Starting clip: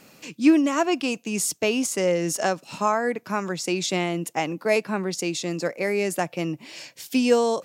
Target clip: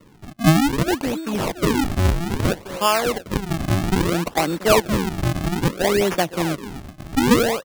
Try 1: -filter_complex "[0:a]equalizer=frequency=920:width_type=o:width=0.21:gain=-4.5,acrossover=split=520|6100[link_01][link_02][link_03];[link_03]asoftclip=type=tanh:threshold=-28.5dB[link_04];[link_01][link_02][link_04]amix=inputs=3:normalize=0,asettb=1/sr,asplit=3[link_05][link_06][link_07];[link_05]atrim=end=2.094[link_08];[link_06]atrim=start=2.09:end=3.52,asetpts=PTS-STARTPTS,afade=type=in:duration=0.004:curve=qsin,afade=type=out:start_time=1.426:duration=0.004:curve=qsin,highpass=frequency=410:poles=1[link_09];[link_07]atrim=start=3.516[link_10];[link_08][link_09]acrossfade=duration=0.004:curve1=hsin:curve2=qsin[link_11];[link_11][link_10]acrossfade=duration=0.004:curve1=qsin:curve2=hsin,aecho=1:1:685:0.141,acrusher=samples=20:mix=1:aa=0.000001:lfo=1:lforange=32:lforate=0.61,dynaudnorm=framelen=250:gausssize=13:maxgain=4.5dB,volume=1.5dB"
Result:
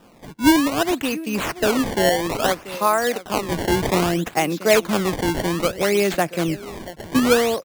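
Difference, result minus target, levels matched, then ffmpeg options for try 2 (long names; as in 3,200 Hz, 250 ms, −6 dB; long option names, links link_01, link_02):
sample-and-hold swept by an LFO: distortion −16 dB; soft clipping: distortion +13 dB
-filter_complex "[0:a]equalizer=frequency=920:width_type=o:width=0.21:gain=-4.5,acrossover=split=520|6100[link_01][link_02][link_03];[link_03]asoftclip=type=tanh:threshold=-18dB[link_04];[link_01][link_02][link_04]amix=inputs=3:normalize=0,asettb=1/sr,asplit=3[link_05][link_06][link_07];[link_05]atrim=end=2.094[link_08];[link_06]atrim=start=2.09:end=3.52,asetpts=PTS-STARTPTS,afade=type=in:duration=0.004:curve=qsin,afade=type=out:start_time=1.426:duration=0.004:curve=qsin,highpass=frequency=410:poles=1[link_09];[link_07]atrim=start=3.516[link_10];[link_08][link_09]acrossfade=duration=0.004:curve1=hsin:curve2=qsin[link_11];[link_11][link_10]acrossfade=duration=0.004:curve1=qsin:curve2=hsin,aecho=1:1:685:0.141,acrusher=samples=53:mix=1:aa=0.000001:lfo=1:lforange=84.8:lforate=0.61,dynaudnorm=framelen=250:gausssize=13:maxgain=4.5dB,volume=1.5dB"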